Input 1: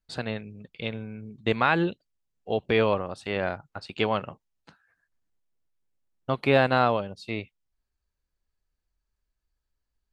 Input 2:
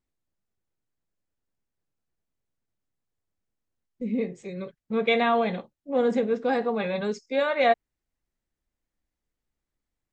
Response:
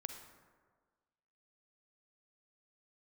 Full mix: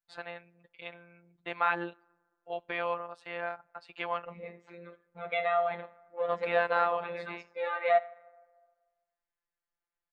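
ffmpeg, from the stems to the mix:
-filter_complex "[0:a]volume=0dB,asplit=2[a][b];[b]volume=-22dB[c];[1:a]lowpass=4.9k,adelay=250,volume=-1dB,asplit=3[d][e][f];[e]volume=-10.5dB[g];[f]volume=-20dB[h];[2:a]atrim=start_sample=2205[i];[c][g]amix=inputs=2:normalize=0[j];[j][i]afir=irnorm=-1:irlink=0[k];[h]aecho=0:1:80:1[l];[a][d][k][l]amix=inputs=4:normalize=0,acrossover=split=560 2400:gain=0.112 1 0.2[m][n][o];[m][n][o]amix=inputs=3:normalize=0,afftfilt=real='hypot(re,im)*cos(PI*b)':imag='0':win_size=1024:overlap=0.75"

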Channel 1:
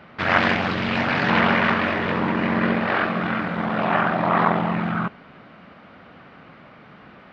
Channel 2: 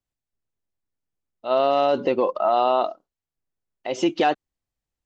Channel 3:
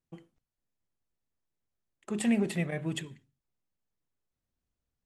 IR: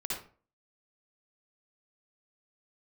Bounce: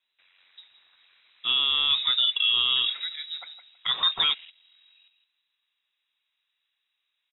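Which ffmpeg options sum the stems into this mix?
-filter_complex "[0:a]alimiter=limit=-19.5dB:level=0:latency=1:release=55,equalizer=f=930:t=o:w=0.25:g=-6,volume=-19dB,asplit=2[a][b];[b]volume=-23dB[c];[1:a]highshelf=f=3.5k:g=11,volume=1.5dB,asplit=2[d][e];[2:a]lowpass=f=2.9k:w=0.5412,lowpass=f=2.9k:w=1.3066,adelay=450,volume=-3dB,asplit=2[f][g];[g]volume=-12.5dB[h];[e]apad=whole_len=327266[i];[a][i]sidechaingate=range=-15dB:threshold=-40dB:ratio=16:detection=peak[j];[c][h]amix=inputs=2:normalize=0,aecho=0:1:162|324|486|648:1|0.22|0.0484|0.0106[k];[j][d][f][k]amix=inputs=4:normalize=0,lowpass=f=3.4k:t=q:w=0.5098,lowpass=f=3.4k:t=q:w=0.6013,lowpass=f=3.4k:t=q:w=0.9,lowpass=f=3.4k:t=q:w=2.563,afreqshift=-4000,alimiter=limit=-14dB:level=0:latency=1:release=34"

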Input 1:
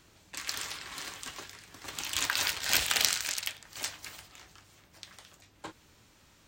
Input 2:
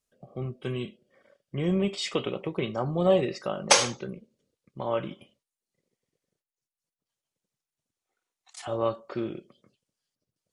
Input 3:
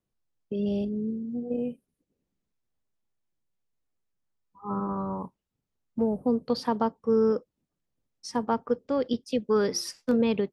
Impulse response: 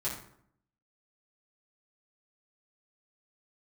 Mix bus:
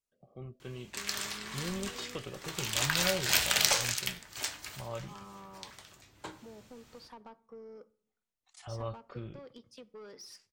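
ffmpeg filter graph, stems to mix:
-filter_complex "[0:a]adelay=600,volume=-1.5dB,asplit=2[a][b];[b]volume=-10dB[c];[1:a]asubboost=boost=10.5:cutoff=91,volume=-11dB[d];[2:a]acompressor=threshold=-30dB:ratio=4,asplit=2[e][f];[f]highpass=f=720:p=1,volume=14dB,asoftclip=type=tanh:threshold=-22.5dB[g];[e][g]amix=inputs=2:normalize=0,lowpass=f=8k:p=1,volume=-6dB,adelay=450,volume=-19dB,asplit=2[h][i];[i]volume=-20dB[j];[3:a]atrim=start_sample=2205[k];[c][j]amix=inputs=2:normalize=0[l];[l][k]afir=irnorm=-1:irlink=0[m];[a][d][h][m]amix=inputs=4:normalize=0"

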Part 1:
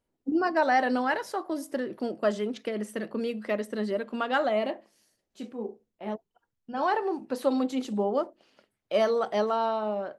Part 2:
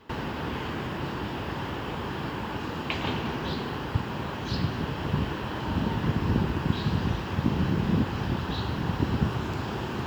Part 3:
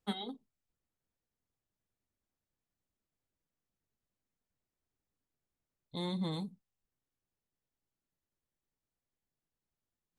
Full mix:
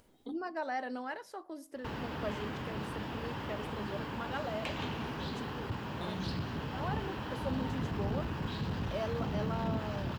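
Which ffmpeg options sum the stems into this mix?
-filter_complex "[0:a]acompressor=mode=upward:threshold=-31dB:ratio=2.5,volume=-13dB,asplit=2[a][b];[1:a]bandreject=f=360:w=12,asoftclip=type=tanh:threshold=-23.5dB,adelay=1750,volume=-6dB[c];[2:a]alimiter=level_in=11.5dB:limit=-24dB:level=0:latency=1,volume=-11.5dB,volume=0.5dB[d];[b]apad=whole_len=449230[e];[d][e]sidechaingate=range=-33dB:threshold=-60dB:ratio=16:detection=peak[f];[a][c][f]amix=inputs=3:normalize=0"

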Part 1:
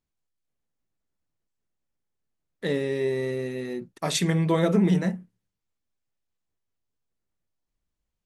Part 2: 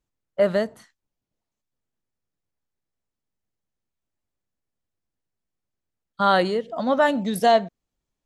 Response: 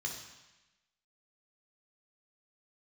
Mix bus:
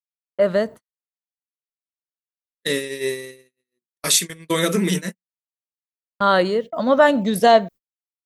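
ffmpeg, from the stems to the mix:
-filter_complex "[0:a]aemphasis=mode=production:type=riaa,alimiter=limit=-12dB:level=0:latency=1:release=335,volume=-3.5dB,asplit=2[a][b];[1:a]equalizer=f=750:w=1.3:g=11,volume=-1.5dB[c];[b]apad=whole_len=363959[d];[c][d]sidechaincompress=threshold=-47dB:ratio=4:attack=16:release=1460[e];[a][e]amix=inputs=2:normalize=0,agate=range=-59dB:threshold=-32dB:ratio=16:detection=peak,equalizer=f=770:w=2.7:g=-15,dynaudnorm=f=210:g=7:m=12dB"

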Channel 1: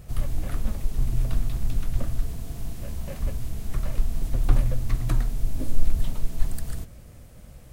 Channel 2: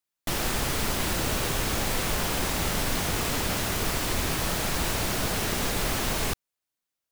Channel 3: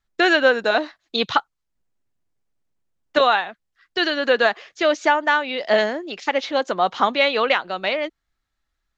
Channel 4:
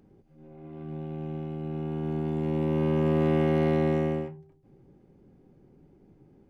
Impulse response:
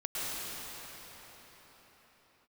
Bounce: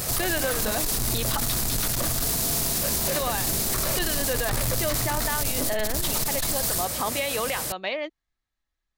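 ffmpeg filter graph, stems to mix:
-filter_complex "[0:a]asoftclip=type=tanh:threshold=-16.5dB,asplit=2[a][b];[b]highpass=f=720:p=1,volume=32dB,asoftclip=type=tanh:threshold=-16.5dB[c];[a][c]amix=inputs=2:normalize=0,lowpass=f=6.4k:p=1,volume=-6dB,aexciter=amount=3.2:drive=4.3:freq=4k,volume=-1.5dB[d];[1:a]volume=-18.5dB[e];[2:a]bandreject=f=1.4k:w=7.2,volume=-6dB[f];[3:a]volume=-13dB[g];[d][e][f][g]amix=inputs=4:normalize=0,alimiter=limit=-16dB:level=0:latency=1:release=48"

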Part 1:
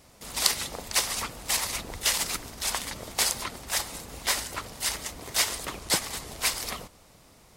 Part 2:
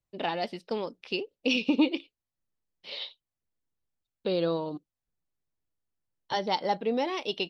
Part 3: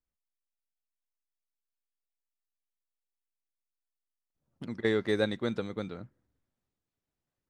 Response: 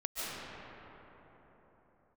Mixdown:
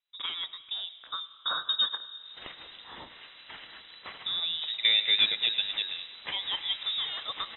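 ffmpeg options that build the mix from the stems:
-filter_complex "[0:a]adelay=2000,volume=-7dB,afade=t=in:st=5.71:d=0.77:silence=0.375837,asplit=2[a][b];[b]volume=-7.5dB[c];[1:a]volume=-5dB,asplit=4[d][e][f][g];[e]volume=-20.5dB[h];[f]volume=-21.5dB[i];[2:a]asplit=2[j][k];[k]highpass=f=720:p=1,volume=16dB,asoftclip=type=tanh:threshold=-6.5dB[l];[j][l]amix=inputs=2:normalize=0,lowpass=f=1.6k:p=1,volume=-6dB,volume=-0.5dB,asplit=2[m][n];[n]volume=-12dB[o];[g]apad=whole_len=421950[p];[a][p]sidechaincompress=threshold=-58dB:ratio=8:attack=16:release=240[q];[3:a]atrim=start_sample=2205[r];[c][h]amix=inputs=2:normalize=0[s];[s][r]afir=irnorm=-1:irlink=0[t];[i][o]amix=inputs=2:normalize=0,aecho=0:1:104|208|312|416|520|624:1|0.46|0.212|0.0973|0.0448|0.0206[u];[q][d][m][t][u]amix=inputs=5:normalize=0,lowpass=f=3.4k:t=q:w=0.5098,lowpass=f=3.4k:t=q:w=0.6013,lowpass=f=3.4k:t=q:w=0.9,lowpass=f=3.4k:t=q:w=2.563,afreqshift=-4000"

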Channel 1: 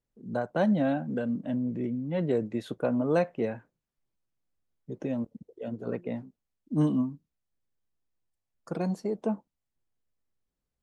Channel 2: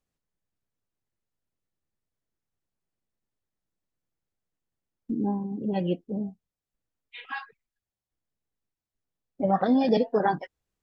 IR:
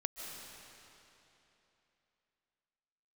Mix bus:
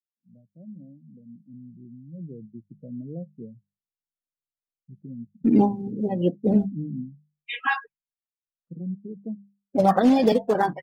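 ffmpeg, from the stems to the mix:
-filter_complex "[0:a]bandpass=f=150:t=q:w=1.8:csg=0,volume=-5.5dB,afade=t=in:st=8.45:d=0.72:silence=0.446684,asplit=2[a][b];[1:a]acrusher=bits=4:mode=log:mix=0:aa=0.000001,adelay=350,volume=-0.5dB[c];[b]apad=whole_len=492834[d];[c][d]sidechaincompress=threshold=-60dB:ratio=10:attack=16:release=266[e];[a][e]amix=inputs=2:normalize=0,afftdn=nr=32:nf=-43,bandreject=f=50:t=h:w=6,bandreject=f=100:t=h:w=6,bandreject=f=150:t=h:w=6,bandreject=f=200:t=h:w=6,dynaudnorm=f=940:g=5:m=13dB"

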